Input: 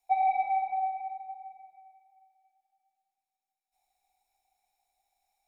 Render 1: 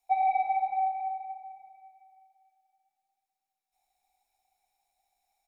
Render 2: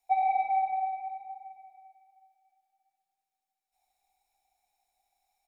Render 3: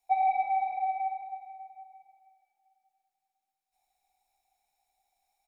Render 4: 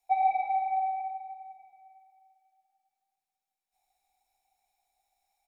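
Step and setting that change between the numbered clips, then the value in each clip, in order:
echo, time: 241, 73, 495, 140 ms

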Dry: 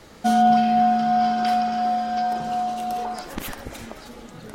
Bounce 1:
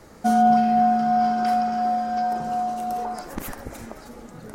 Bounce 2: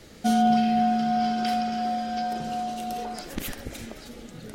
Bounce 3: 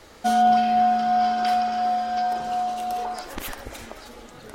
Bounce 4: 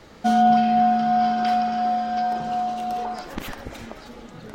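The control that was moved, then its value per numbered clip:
bell, frequency: 3300, 1000, 170, 11000 Hz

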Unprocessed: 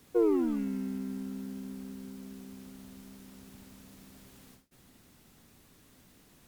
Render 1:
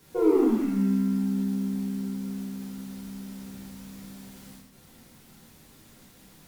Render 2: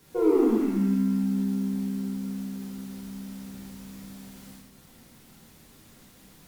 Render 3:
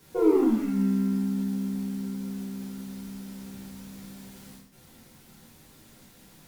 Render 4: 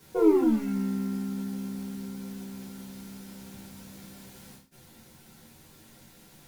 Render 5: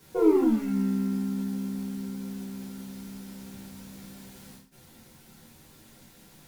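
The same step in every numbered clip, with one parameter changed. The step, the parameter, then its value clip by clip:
non-linear reverb, gate: 300, 440, 200, 80, 120 ms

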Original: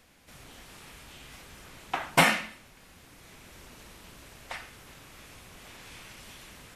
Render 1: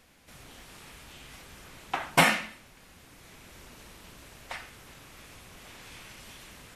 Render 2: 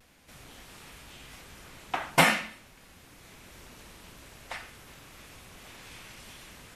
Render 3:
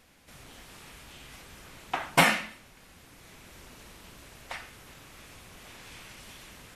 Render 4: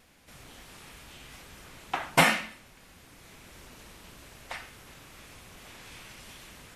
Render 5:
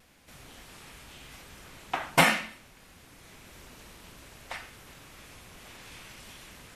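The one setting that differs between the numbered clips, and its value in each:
vibrato, rate: 12, 0.41, 6, 2.2, 0.88 Hz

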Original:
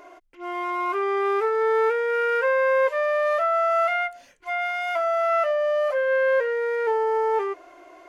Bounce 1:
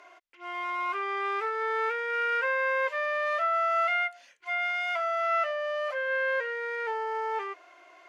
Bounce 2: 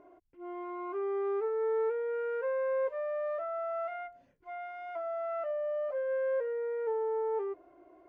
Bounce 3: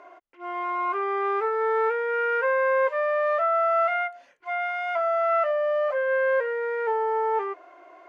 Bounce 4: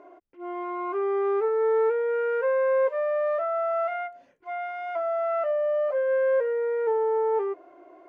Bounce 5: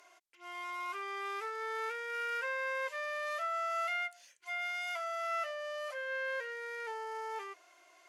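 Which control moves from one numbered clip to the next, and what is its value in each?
band-pass, frequency: 2800, 110, 1000, 330, 7700 Hz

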